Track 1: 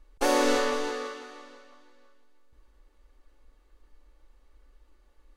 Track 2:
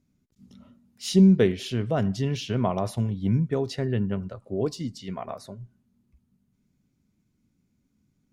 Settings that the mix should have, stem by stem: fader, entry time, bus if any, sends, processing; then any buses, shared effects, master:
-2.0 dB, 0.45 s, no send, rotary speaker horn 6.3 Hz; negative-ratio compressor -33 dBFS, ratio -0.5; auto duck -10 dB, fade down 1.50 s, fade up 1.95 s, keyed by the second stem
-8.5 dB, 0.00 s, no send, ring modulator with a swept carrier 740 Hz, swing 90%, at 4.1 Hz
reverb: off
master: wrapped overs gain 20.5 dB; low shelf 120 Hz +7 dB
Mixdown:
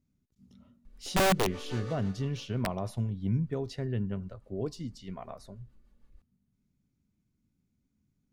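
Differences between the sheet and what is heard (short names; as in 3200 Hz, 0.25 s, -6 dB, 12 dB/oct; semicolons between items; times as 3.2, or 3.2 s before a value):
stem 1: entry 0.45 s -> 0.85 s; stem 2: missing ring modulator with a swept carrier 740 Hz, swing 90%, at 4.1 Hz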